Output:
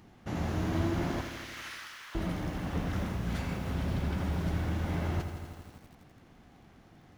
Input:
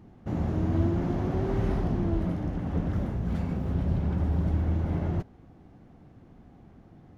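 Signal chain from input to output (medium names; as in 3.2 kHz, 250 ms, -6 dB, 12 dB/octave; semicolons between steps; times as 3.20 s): 1.21–2.15 s: spectral gate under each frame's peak -30 dB weak; tilt shelf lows -8 dB, about 1.1 kHz; bit-crushed delay 84 ms, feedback 80%, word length 9-bit, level -9.5 dB; trim +2 dB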